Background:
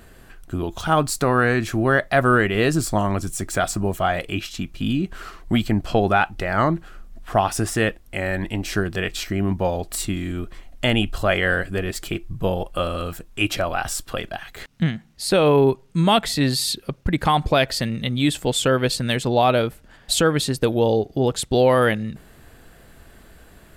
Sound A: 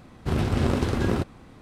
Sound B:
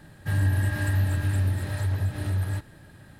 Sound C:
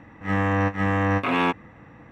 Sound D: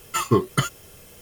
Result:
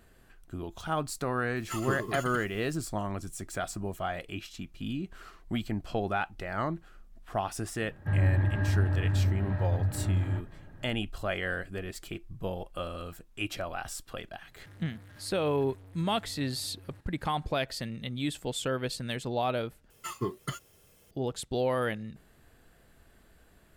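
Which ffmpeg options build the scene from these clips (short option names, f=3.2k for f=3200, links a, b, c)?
-filter_complex "[4:a]asplit=2[a][b];[2:a]asplit=2[c][d];[0:a]volume=-12.5dB[e];[a]aecho=1:1:116.6|204.1:0.398|0.398[f];[c]lowpass=1.5k[g];[d]volume=34.5dB,asoftclip=hard,volume=-34.5dB[h];[e]asplit=2[i][j];[i]atrim=end=19.904[k];[b]atrim=end=1.21,asetpts=PTS-STARTPTS,volume=-14dB[l];[j]atrim=start=21.106[m];[f]atrim=end=1.21,asetpts=PTS-STARTPTS,volume=-13.5dB,afade=t=in:d=0.004:c=hsin,afade=t=out:st=1.206:d=0.004:c=hsin,adelay=1560[n];[g]atrim=end=3.19,asetpts=PTS-STARTPTS,volume=-2dB,afade=t=in:d=0.004:c=hsin,afade=t=out:st=3.186:d=0.004:c=hsin,adelay=7800[o];[h]atrim=end=3.19,asetpts=PTS-STARTPTS,volume=-16dB,afade=t=in:d=0.004:c=hsin,afade=t=out:st=3.186:d=0.004:c=hsin,adelay=14400[p];[k][l]acrossfade=d=0.004:c1=hsin:c2=hsin[q];[q][m]acrossfade=d=0.004:c1=hsin:c2=hsin[r];[r][n][o][p]amix=inputs=4:normalize=0"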